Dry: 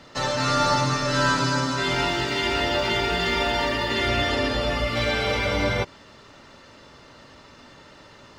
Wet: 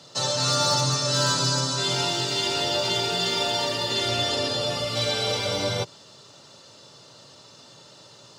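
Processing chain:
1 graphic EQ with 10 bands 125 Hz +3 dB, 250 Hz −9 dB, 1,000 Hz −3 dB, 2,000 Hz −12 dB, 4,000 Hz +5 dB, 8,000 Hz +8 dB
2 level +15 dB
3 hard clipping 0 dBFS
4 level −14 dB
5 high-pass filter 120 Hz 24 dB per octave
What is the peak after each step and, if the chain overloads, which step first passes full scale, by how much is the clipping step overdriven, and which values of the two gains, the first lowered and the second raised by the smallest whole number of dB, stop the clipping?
−10.5, +4.5, 0.0, −14.0, −11.0 dBFS
step 2, 4.5 dB
step 2 +10 dB, step 4 −9 dB

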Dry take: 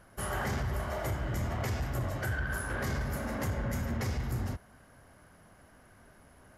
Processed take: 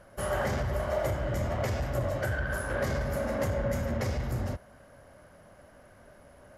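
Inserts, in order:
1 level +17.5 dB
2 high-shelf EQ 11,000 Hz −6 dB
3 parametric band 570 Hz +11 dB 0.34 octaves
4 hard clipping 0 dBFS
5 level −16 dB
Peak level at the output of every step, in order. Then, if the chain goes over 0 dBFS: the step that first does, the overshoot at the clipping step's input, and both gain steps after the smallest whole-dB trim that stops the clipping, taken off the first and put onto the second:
−8.5, −8.5, −2.5, −2.5, −18.5 dBFS
no step passes full scale

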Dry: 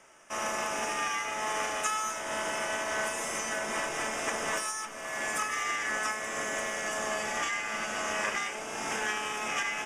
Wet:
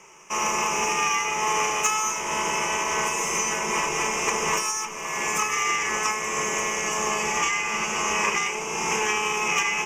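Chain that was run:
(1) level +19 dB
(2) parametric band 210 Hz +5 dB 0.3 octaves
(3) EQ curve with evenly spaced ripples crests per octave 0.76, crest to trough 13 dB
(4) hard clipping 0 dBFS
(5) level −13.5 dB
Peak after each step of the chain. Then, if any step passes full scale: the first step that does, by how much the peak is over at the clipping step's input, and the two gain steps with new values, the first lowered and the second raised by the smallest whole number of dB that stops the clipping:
+3.0, +3.0, +4.5, 0.0, −13.5 dBFS
step 1, 4.5 dB
step 1 +14 dB, step 5 −8.5 dB

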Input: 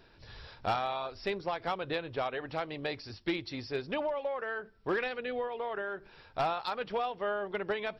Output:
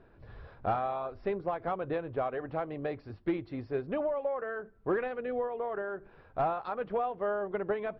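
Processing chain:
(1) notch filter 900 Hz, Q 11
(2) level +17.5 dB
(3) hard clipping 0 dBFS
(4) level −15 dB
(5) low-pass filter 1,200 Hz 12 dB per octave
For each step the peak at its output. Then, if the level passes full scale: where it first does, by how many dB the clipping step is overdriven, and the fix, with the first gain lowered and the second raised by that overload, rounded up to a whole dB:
−21.0, −3.5, −3.5, −18.5, −20.0 dBFS
no step passes full scale

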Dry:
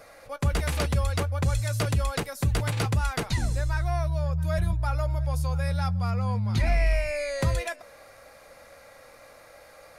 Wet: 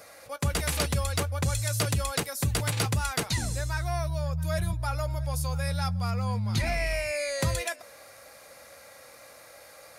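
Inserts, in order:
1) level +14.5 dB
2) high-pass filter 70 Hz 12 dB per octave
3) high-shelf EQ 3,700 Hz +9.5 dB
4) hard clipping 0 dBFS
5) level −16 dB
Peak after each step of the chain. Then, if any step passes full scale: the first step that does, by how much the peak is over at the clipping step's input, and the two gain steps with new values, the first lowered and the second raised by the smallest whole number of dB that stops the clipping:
−1.5, +1.5, +6.0, 0.0, −16.0 dBFS
step 2, 6.0 dB
step 1 +8.5 dB, step 5 −10 dB

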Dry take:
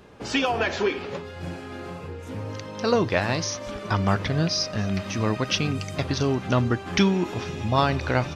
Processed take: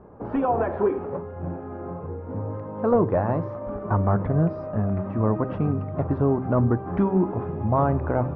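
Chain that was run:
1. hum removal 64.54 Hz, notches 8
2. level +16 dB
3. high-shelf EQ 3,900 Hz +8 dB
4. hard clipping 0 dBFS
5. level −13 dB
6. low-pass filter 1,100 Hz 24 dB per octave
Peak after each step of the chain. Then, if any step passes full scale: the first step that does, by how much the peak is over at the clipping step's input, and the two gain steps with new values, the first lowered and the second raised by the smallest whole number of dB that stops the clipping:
−7.5, +8.5, +10.0, 0.0, −13.0, −11.5 dBFS
step 2, 10.0 dB
step 2 +6 dB, step 5 −3 dB

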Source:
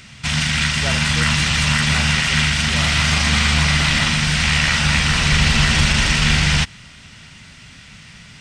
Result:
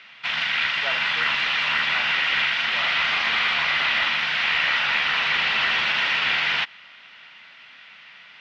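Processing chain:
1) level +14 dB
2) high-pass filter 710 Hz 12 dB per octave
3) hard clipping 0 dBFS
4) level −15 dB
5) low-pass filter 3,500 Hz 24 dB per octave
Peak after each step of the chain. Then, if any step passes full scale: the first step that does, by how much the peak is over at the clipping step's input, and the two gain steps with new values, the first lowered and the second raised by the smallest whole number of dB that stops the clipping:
+9.5, +9.0, 0.0, −15.0, −13.0 dBFS
step 1, 9.0 dB
step 1 +5 dB, step 4 −6 dB

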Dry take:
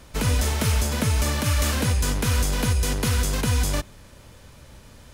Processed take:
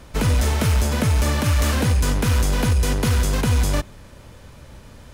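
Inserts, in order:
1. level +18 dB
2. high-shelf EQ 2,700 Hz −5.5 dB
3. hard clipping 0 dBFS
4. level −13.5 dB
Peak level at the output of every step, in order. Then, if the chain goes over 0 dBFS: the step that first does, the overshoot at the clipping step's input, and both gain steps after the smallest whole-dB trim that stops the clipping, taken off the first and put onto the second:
+7.0, +6.5, 0.0, −13.5 dBFS
step 1, 6.5 dB
step 1 +11 dB, step 4 −6.5 dB

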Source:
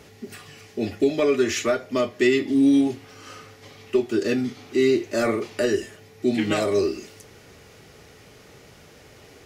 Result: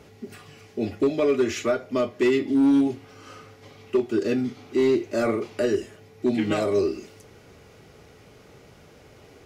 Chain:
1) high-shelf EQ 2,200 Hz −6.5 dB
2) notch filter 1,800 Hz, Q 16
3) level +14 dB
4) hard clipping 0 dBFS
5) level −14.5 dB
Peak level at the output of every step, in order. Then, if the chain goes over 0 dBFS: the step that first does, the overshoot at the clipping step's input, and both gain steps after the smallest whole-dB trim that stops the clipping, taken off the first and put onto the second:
−9.0, −9.5, +4.5, 0.0, −14.5 dBFS
step 3, 4.5 dB
step 3 +9 dB, step 5 −9.5 dB

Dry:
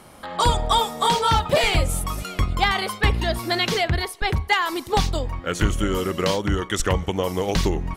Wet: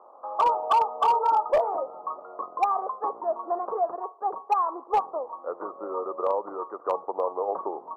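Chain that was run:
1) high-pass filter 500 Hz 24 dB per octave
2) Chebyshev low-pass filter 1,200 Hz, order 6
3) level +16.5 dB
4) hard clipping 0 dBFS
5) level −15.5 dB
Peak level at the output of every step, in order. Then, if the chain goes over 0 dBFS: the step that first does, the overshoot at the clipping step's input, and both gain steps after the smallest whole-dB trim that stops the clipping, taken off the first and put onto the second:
−5.0, −10.0, +6.5, 0.0, −15.5 dBFS
step 3, 6.5 dB
step 3 +9.5 dB, step 5 −8.5 dB

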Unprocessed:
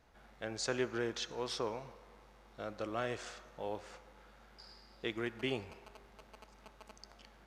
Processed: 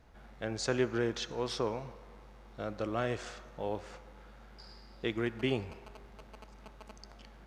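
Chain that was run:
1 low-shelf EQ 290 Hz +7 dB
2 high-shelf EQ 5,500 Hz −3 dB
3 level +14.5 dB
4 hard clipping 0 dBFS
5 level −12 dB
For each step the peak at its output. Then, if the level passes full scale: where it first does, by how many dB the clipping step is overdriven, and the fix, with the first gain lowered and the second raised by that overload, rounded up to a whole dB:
−18.5, −18.5, −4.0, −4.0, −16.0 dBFS
no step passes full scale

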